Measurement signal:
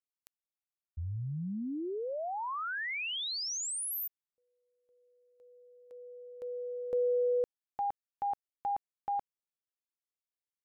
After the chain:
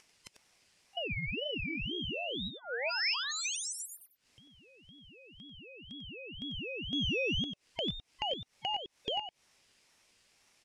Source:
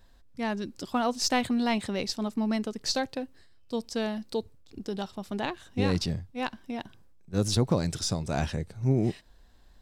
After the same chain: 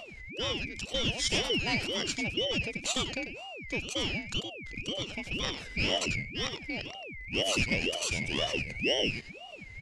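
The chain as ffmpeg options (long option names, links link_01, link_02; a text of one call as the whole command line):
ffmpeg -i in.wav -filter_complex "[0:a]afftfilt=real='real(if(lt(b,960),b+48*(1-2*mod(floor(b/48),2)),b),0)':imag='imag(if(lt(b,960),b+48*(1-2*mod(floor(b/48),2)),b),0)':win_size=2048:overlap=0.75,asplit=2[link_01][link_02];[link_02]acompressor=mode=upward:threshold=-34dB:ratio=2.5:attack=49:release=103:knee=2.83:detection=peak,volume=-1dB[link_03];[link_01][link_03]amix=inputs=2:normalize=0,asoftclip=type=tanh:threshold=-16dB,highpass=frequency=420:width=0.5412,highpass=frequency=420:width=1.3066,equalizer=frequency=510:width_type=q:width=4:gain=4,equalizer=frequency=910:width_type=q:width=4:gain=6,equalizer=frequency=3800:width_type=q:width=4:gain=8,lowpass=frequency=8700:width=0.5412,lowpass=frequency=8700:width=1.3066,aecho=1:1:94:0.376,aeval=exprs='val(0)*sin(2*PI*1400*n/s+1400*0.3/2*sin(2*PI*2*n/s))':channel_layout=same,volume=-5dB" out.wav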